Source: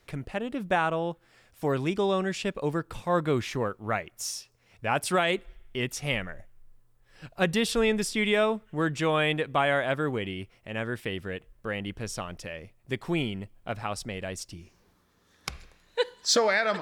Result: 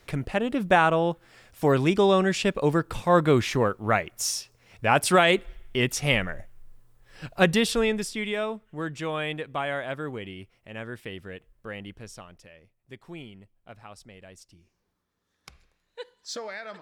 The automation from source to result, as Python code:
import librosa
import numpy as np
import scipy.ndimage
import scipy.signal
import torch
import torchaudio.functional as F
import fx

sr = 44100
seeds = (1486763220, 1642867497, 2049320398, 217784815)

y = fx.gain(x, sr, db=fx.line((7.38, 6.0), (8.28, -5.0), (11.8, -5.0), (12.53, -13.0)))